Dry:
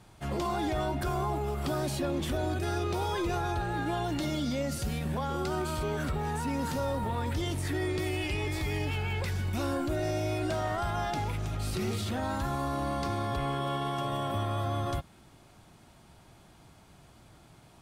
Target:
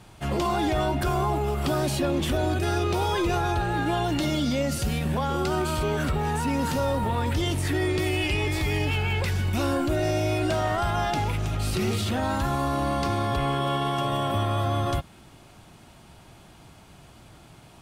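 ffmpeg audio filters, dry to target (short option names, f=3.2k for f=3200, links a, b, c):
-af "equalizer=f=2.8k:t=o:w=0.38:g=3.5,volume=6dB"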